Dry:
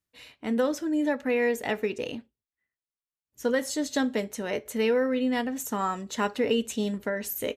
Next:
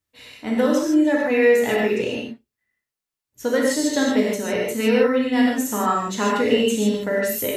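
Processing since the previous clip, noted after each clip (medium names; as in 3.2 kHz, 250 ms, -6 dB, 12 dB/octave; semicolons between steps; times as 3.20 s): gated-style reverb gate 180 ms flat, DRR -3.5 dB; trim +2.5 dB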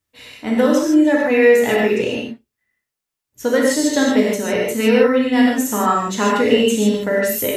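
peaking EQ 4.2 kHz -2 dB 0.21 oct; trim +4 dB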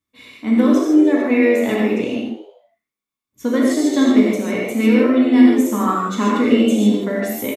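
small resonant body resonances 240/1100/2200/3500 Hz, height 12 dB, ringing for 25 ms; on a send: frequency-shifting echo 81 ms, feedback 46%, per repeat +89 Hz, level -11.5 dB; on the sum: trim -7.5 dB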